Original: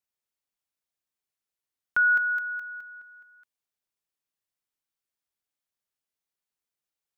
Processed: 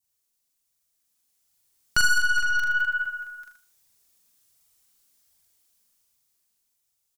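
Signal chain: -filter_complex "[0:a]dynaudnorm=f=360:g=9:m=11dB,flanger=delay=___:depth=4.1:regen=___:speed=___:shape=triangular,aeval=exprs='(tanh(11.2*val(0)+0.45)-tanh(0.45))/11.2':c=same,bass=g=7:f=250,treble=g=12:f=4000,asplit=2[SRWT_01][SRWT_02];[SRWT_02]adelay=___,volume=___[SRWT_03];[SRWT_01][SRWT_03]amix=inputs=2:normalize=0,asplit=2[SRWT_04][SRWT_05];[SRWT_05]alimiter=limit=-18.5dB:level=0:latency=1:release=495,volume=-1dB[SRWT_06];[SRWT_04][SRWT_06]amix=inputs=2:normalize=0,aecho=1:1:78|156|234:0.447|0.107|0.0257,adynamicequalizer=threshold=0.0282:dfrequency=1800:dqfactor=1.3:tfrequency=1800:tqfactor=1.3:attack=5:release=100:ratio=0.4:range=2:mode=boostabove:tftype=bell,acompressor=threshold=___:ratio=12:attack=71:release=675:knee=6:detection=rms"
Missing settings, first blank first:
0.8, 24, 1.3, 42, -2dB, -17dB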